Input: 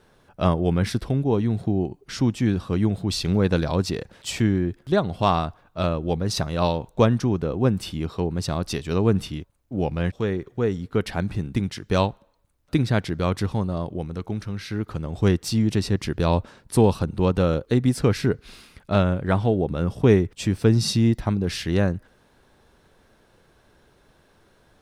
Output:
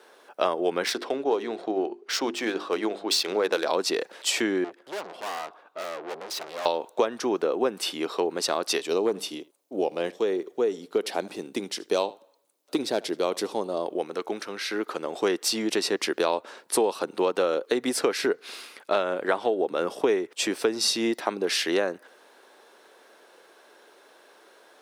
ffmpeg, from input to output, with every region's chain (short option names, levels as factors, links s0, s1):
-filter_complex "[0:a]asettb=1/sr,asplit=3[s0][s1][s2];[s0]atrim=end=0.844[s3];[s1]atrim=start=0.84:end=3.67,asetpts=PTS-STARTPTS,afade=t=in:d=0.004:c=qsin,afade=t=out:st=2.826:d=0.004:c=qsin,bandreject=f=50:t=h:w=6,bandreject=f=100:t=h:w=6,bandreject=f=150:t=h:w=6,bandreject=f=200:t=h:w=6,bandreject=f=250:t=h:w=6,bandreject=f=300:t=h:w=6,bandreject=f=350:t=h:w=6,bandreject=f=400:t=h:w=6,adynamicsmooth=sensitivity=8:basefreq=3600,bass=f=250:g=-8,treble=f=4000:g=3[s4];[s2]atrim=start=3.666[s5];[s3][s4]acrossfade=d=0.004:c1=hsin:c2=qsin[s6];[s6][s5]acrossfade=d=0.004:c1=qsin:c2=hsin,asettb=1/sr,asplit=3[s7][s8][s9];[s7]atrim=end=4.644[s10];[s8]atrim=start=4.64:end=6.66,asetpts=PTS-STARTPTS,afade=t=in:d=0.004:c=qsin,afade=t=out:st=2.016:d=0.004:c=qsin,aemphasis=mode=reproduction:type=cd,aeval=exprs='(tanh(63.1*val(0)+0.5)-tanh(0.5))/63.1':c=same[s11];[s9]atrim=start=6.656[s12];[s10][s11]acrossfade=d=0.004:c1=hsin:c2=qsin[s13];[s13][s12]acrossfade=d=0.004:c1=qsin:c2=hsin,asettb=1/sr,asplit=3[s14][s15][s16];[s14]atrim=end=8.864[s17];[s15]atrim=start=8.86:end=13.86,asetpts=PTS-STARTPTS,afade=t=in:d=0.004:c=qsin,afade=t=out:st=4.996:d=0.004:c=qsin,equalizer=f=1600:w=0.82:g=-10,asoftclip=type=hard:threshold=0.251,aecho=1:1:77:0.075,atrim=end_sample=220500[s18];[s16]atrim=start=13.856[s19];[s17][s18]acrossfade=d=0.004:c1=hsin:c2=qsin[s20];[s20][s19]acrossfade=d=0.004:c1=qsin:c2=hsin,highpass=f=360:w=0.5412,highpass=f=360:w=1.3066,acompressor=threshold=0.0447:ratio=5,volume=2.11"